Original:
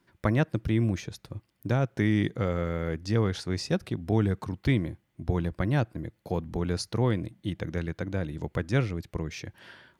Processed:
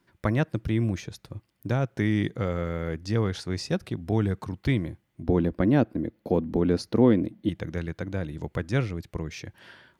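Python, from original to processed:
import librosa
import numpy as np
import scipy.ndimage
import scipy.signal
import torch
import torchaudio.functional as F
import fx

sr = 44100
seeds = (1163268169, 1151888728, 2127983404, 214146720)

y = fx.graphic_eq(x, sr, hz=(125, 250, 500, 8000), db=(-4, 12, 5, -8), at=(5.23, 7.49))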